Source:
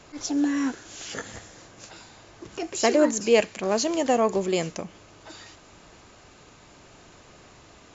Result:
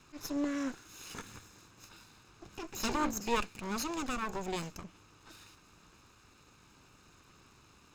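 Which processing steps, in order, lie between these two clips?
lower of the sound and its delayed copy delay 0.76 ms
level −8.5 dB

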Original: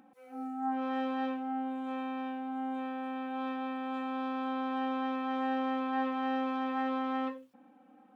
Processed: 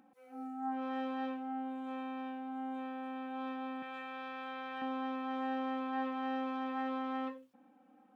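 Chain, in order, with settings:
0:03.82–0:04.82: octave-band graphic EQ 125/250/1,000/2,000 Hz +8/−12/−5/+8 dB
level −4.5 dB

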